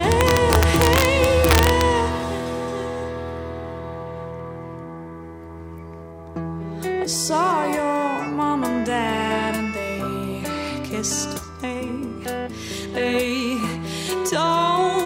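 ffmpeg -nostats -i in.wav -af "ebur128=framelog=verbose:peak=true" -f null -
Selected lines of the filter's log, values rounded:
Integrated loudness:
  I:         -21.7 LUFS
  Threshold: -32.4 LUFS
Loudness range:
  LRA:        13.0 LU
  Threshold: -43.9 LUFS
  LRA low:   -32.3 LUFS
  LRA high:  -19.3 LUFS
True peak:
  Peak:       -0.5 dBFS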